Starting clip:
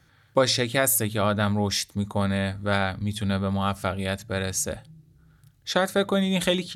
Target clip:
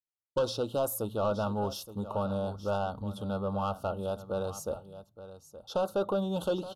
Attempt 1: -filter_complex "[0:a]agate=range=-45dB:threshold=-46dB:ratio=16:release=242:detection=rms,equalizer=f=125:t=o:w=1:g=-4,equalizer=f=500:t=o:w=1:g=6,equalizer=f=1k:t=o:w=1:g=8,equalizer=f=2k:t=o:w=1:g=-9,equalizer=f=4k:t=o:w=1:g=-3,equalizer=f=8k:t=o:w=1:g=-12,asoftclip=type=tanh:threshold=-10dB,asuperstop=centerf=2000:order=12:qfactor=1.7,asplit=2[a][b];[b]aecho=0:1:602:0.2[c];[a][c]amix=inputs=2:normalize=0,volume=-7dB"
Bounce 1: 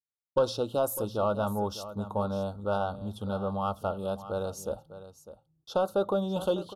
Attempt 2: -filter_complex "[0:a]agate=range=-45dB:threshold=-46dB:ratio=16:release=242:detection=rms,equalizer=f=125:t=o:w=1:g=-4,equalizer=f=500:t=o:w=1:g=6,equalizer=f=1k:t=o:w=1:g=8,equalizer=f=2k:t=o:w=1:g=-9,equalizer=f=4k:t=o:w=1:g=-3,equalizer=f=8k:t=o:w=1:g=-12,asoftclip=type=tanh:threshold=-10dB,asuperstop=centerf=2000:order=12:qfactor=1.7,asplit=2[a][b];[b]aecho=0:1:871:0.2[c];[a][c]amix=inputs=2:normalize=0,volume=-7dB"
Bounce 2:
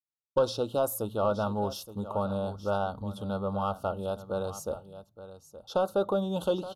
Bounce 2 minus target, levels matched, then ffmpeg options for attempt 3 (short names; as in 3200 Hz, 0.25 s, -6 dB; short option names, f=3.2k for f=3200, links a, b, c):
soft clip: distortion -6 dB
-filter_complex "[0:a]agate=range=-45dB:threshold=-46dB:ratio=16:release=242:detection=rms,equalizer=f=125:t=o:w=1:g=-4,equalizer=f=500:t=o:w=1:g=6,equalizer=f=1k:t=o:w=1:g=8,equalizer=f=2k:t=o:w=1:g=-9,equalizer=f=4k:t=o:w=1:g=-3,equalizer=f=8k:t=o:w=1:g=-12,asoftclip=type=tanh:threshold=-16dB,asuperstop=centerf=2000:order=12:qfactor=1.7,asplit=2[a][b];[b]aecho=0:1:871:0.2[c];[a][c]amix=inputs=2:normalize=0,volume=-7dB"